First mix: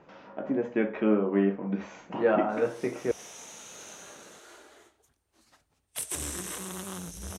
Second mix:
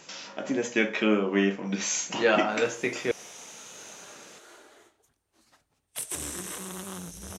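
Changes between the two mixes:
speech: remove LPF 1100 Hz 12 dB/oct; master: add bell 65 Hz -7.5 dB 0.49 oct

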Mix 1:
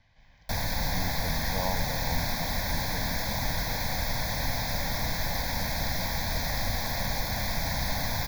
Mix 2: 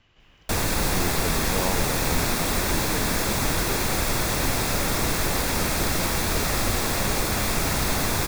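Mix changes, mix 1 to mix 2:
background +3.5 dB; master: remove fixed phaser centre 1900 Hz, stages 8

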